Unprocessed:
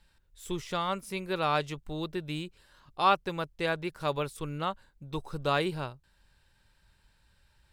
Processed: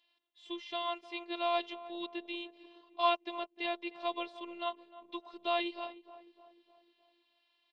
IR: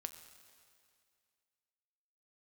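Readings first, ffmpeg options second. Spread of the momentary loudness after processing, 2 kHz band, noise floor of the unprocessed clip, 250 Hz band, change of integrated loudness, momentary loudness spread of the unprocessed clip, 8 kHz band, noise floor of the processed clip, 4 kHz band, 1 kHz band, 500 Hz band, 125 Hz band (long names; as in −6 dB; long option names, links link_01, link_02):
15 LU, −5.5 dB, −68 dBFS, −6.5 dB, −5.0 dB, 13 LU, below −20 dB, −76 dBFS, −1.5 dB, −5.0 dB, −4.5 dB, below −40 dB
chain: -filter_complex "[0:a]aexciter=amount=9.4:drive=7:freq=2100,highpass=frequency=210:width=0.5412,highpass=frequency=210:width=1.3066,equalizer=frequency=300:width_type=q:width=4:gain=4,equalizer=frequency=520:width_type=q:width=4:gain=9,equalizer=frequency=740:width_type=q:width=4:gain=10,equalizer=frequency=1100:width_type=q:width=4:gain=10,equalizer=frequency=1600:width_type=q:width=4:gain=-8,equalizer=frequency=2400:width_type=q:width=4:gain=-9,lowpass=frequency=2700:width=0.5412,lowpass=frequency=2700:width=1.3066,asplit=2[link_01][link_02];[link_02]adelay=305,lowpass=frequency=1400:poles=1,volume=-15dB,asplit=2[link_03][link_04];[link_04]adelay=305,lowpass=frequency=1400:poles=1,volume=0.54,asplit=2[link_05][link_06];[link_06]adelay=305,lowpass=frequency=1400:poles=1,volume=0.54,asplit=2[link_07][link_08];[link_08]adelay=305,lowpass=frequency=1400:poles=1,volume=0.54,asplit=2[link_09][link_10];[link_10]adelay=305,lowpass=frequency=1400:poles=1,volume=0.54[link_11];[link_01][link_03][link_05][link_07][link_09][link_11]amix=inputs=6:normalize=0,afftfilt=real='hypot(re,im)*cos(PI*b)':imag='0':win_size=512:overlap=0.75,volume=-8.5dB"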